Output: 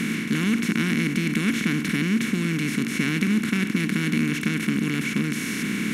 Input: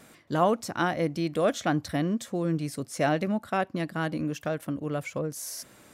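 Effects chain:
compressor on every frequency bin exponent 0.2
drawn EQ curve 110 Hz 0 dB, 220 Hz +12 dB, 410 Hz −3 dB, 610 Hz −30 dB, 2,200 Hz +12 dB, 4,400 Hz +2 dB
level −7 dB

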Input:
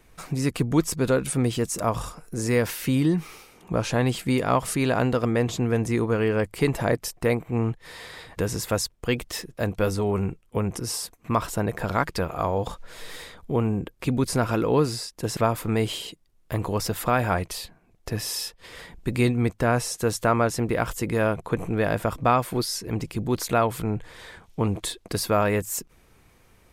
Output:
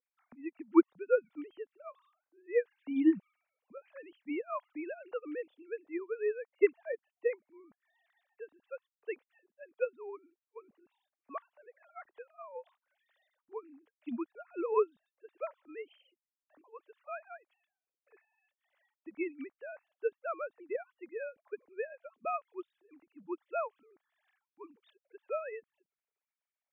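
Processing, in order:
three sine waves on the formant tracks
expander for the loud parts 2.5 to 1, over −30 dBFS
level −4 dB

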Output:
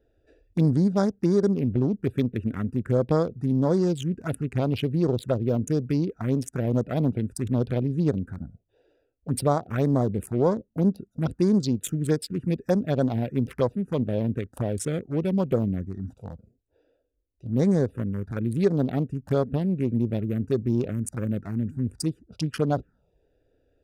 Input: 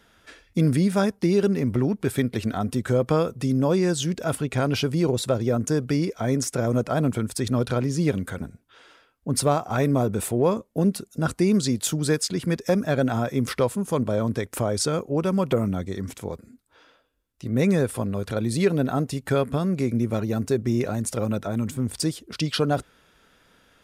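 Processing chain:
adaptive Wiener filter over 41 samples
phaser swept by the level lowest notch 190 Hz, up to 2,700 Hz, full sweep at −17.5 dBFS

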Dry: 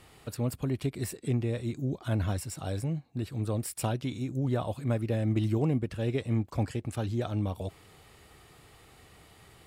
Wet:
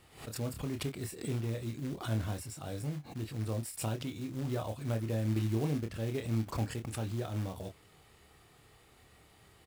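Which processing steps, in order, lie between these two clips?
floating-point word with a short mantissa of 2 bits
double-tracking delay 27 ms −6 dB
background raised ahead of every attack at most 120 dB per second
level −6.5 dB

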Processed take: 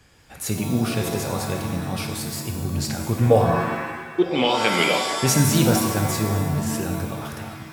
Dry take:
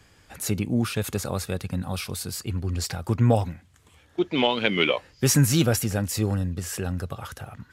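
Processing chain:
0:03.31–0:04.34: parametric band 460 Hz +11 dB 0.53 octaves
reverb with rising layers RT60 1.3 s, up +7 semitones, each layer −2 dB, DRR 3.5 dB

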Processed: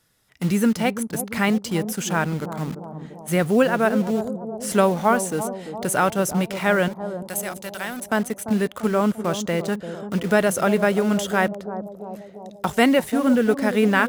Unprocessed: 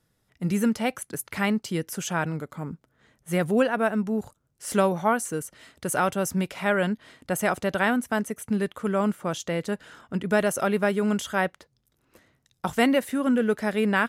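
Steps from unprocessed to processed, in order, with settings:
0:06.88–0:08.02: first-order pre-emphasis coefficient 0.8
in parallel at −4.5 dB: bit-depth reduction 6 bits, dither none
on the sum: bucket-brigade delay 343 ms, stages 2,048, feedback 57%, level −10 dB
one half of a high-frequency compander encoder only

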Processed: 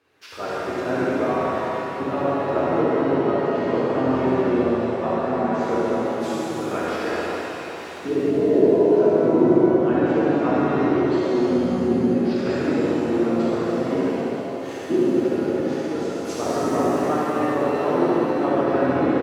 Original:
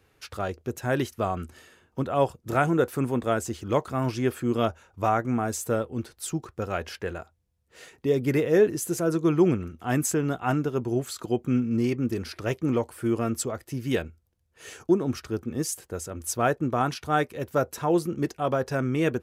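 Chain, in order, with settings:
running median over 5 samples
treble cut that deepens with the level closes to 500 Hz, closed at −19.5 dBFS
high-pass filter 250 Hz 12 dB per octave
pitch-shifted copies added −7 semitones −13 dB, −5 semitones −9 dB
on a send: flutter between parallel walls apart 11.9 metres, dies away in 0.92 s
on the sum: reverb with rising layers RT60 3.7 s, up +7 semitones, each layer −8 dB, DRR −8 dB
level −3 dB

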